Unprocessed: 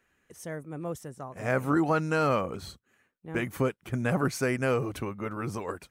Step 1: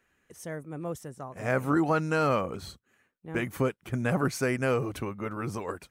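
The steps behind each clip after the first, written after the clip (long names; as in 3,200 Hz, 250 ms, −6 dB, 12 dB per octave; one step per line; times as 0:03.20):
no processing that can be heard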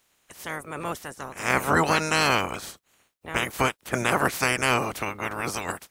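ceiling on every frequency bin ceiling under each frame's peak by 25 dB
level +4 dB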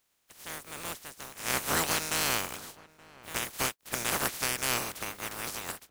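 compressing power law on the bin magnitudes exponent 0.31
slap from a distant wall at 150 metres, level −20 dB
level −7 dB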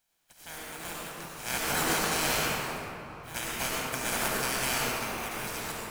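flanger 1.9 Hz, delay 4.1 ms, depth 1.8 ms, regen −61%
convolution reverb RT60 2.8 s, pre-delay 73 ms, DRR −4 dB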